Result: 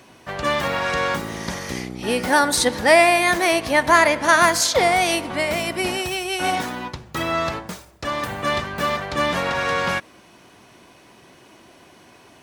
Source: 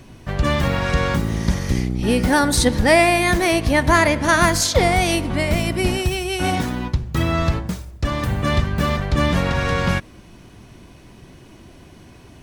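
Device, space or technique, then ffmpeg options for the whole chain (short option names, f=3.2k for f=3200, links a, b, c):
filter by subtraction: -filter_complex "[0:a]asplit=2[a][b];[b]lowpass=800,volume=-1[c];[a][c]amix=inputs=2:normalize=0"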